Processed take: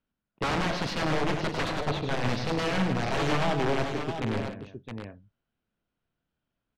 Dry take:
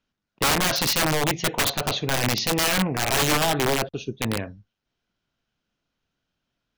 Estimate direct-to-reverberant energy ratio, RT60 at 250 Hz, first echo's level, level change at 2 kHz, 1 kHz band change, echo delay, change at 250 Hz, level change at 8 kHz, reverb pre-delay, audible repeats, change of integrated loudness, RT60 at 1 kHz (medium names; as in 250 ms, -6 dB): no reverb, no reverb, -7.0 dB, -6.5 dB, -4.0 dB, 102 ms, -2.5 dB, -18.5 dB, no reverb, 4, -6.5 dB, no reverb